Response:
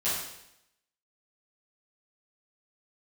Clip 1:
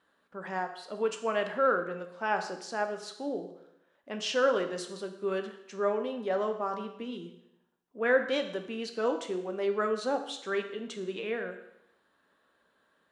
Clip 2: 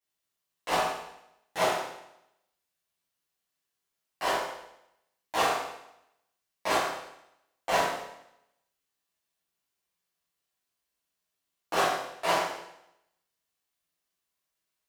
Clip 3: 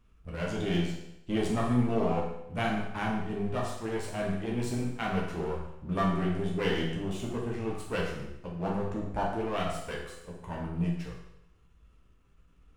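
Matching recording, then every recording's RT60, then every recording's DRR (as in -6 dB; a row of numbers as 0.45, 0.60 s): 2; 0.80, 0.80, 0.80 s; 5.5, -13.0, -4.0 dB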